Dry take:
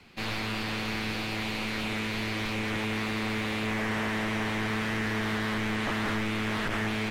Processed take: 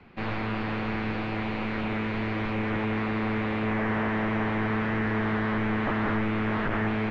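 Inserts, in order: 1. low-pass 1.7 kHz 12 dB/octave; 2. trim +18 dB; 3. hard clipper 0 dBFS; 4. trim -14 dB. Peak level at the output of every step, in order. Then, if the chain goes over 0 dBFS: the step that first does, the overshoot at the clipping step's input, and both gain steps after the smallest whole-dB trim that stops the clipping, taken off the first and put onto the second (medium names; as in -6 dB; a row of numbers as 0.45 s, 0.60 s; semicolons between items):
-21.0 dBFS, -3.0 dBFS, -3.0 dBFS, -17.0 dBFS; nothing clips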